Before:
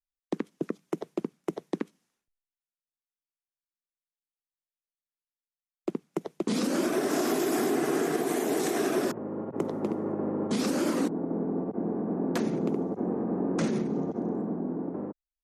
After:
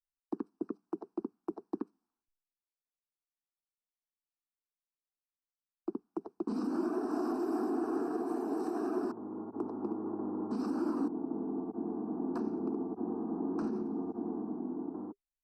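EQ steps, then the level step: running mean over 13 samples; notch 400 Hz, Q 12; fixed phaser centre 550 Hz, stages 6; -3.5 dB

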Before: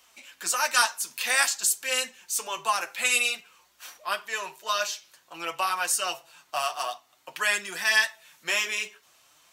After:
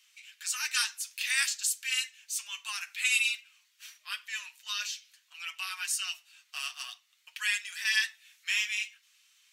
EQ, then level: ladder high-pass 1700 Hz, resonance 25%; high shelf 11000 Hz -6.5 dB; +2.0 dB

